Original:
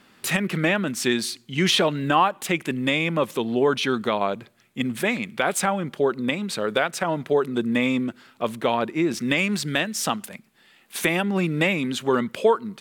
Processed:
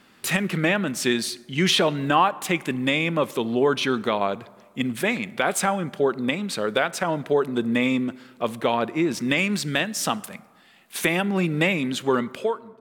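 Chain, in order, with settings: fade out at the end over 0.69 s; plate-style reverb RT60 1.6 s, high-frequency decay 0.45×, DRR 18.5 dB

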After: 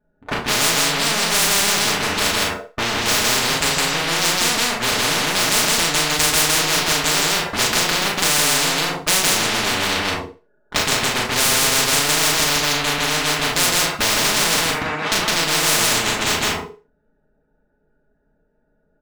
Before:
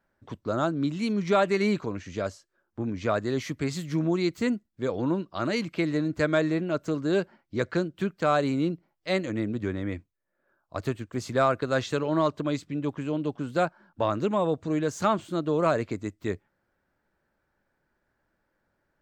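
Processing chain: local Wiener filter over 41 samples; comb 4.8 ms, depth 99%; waveshaping leveller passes 5; compression, threshold -13 dBFS, peak gain reduction 4.5 dB; 14.66–15.12 s: band-pass filter 1 kHz, Q 3; loudspeakers at several distances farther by 12 m -3 dB, 55 m -1 dB, 69 m -7 dB; FDN reverb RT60 0.33 s, low-frequency decay 0.75×, high-frequency decay 0.95×, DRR -1 dB; spectrum-flattening compressor 10:1; trim -7 dB

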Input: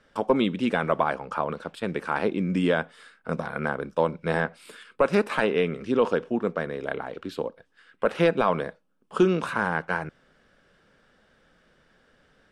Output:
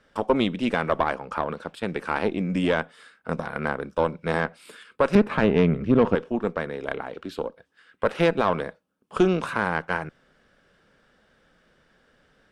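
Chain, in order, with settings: 5.15–6.15 s: tone controls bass +14 dB, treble -14 dB; Chebyshev shaper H 6 -23 dB, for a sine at -5.5 dBFS

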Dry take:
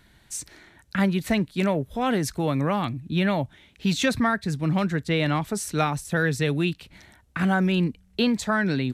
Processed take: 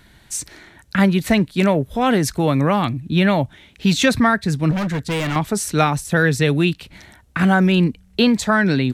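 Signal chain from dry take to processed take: 4.71–5.36 s: hard clipper -26 dBFS, distortion -15 dB; trim +7 dB

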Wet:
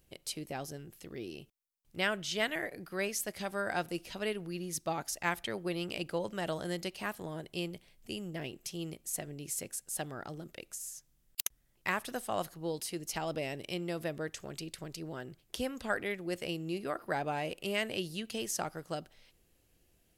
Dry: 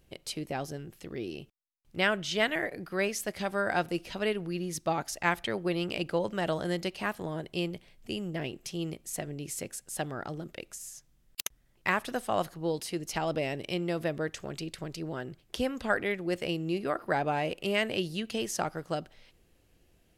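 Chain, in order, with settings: treble shelf 6.1 kHz +9.5 dB; trim -5.5 dB

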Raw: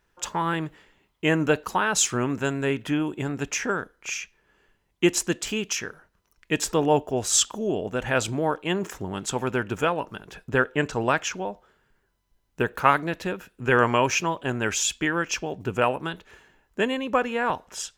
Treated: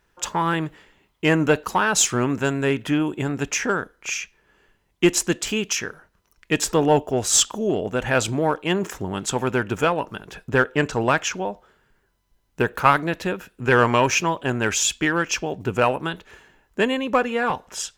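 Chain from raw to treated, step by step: in parallel at -5 dB: one-sided clip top -20 dBFS; 17.21–17.64 s: on the sum: comb of notches 320 Hz

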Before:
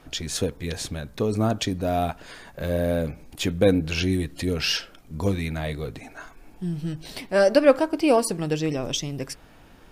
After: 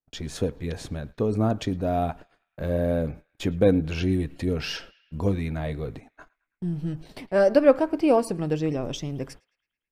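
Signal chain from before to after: gate -38 dBFS, range -45 dB; treble shelf 2.1 kHz -11.5 dB; band-passed feedback delay 109 ms, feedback 61%, band-pass 2.2 kHz, level -23 dB

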